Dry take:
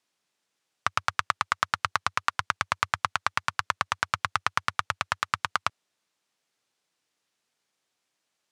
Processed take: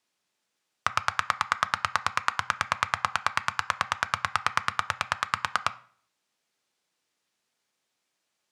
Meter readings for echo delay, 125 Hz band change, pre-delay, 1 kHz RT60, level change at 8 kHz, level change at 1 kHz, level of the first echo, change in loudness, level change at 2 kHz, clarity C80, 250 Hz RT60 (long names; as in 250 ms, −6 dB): no echo audible, −0.5 dB, 3 ms, 0.50 s, 0.0 dB, +0.5 dB, no echo audible, +0.5 dB, +0.5 dB, 22.5 dB, 0.60 s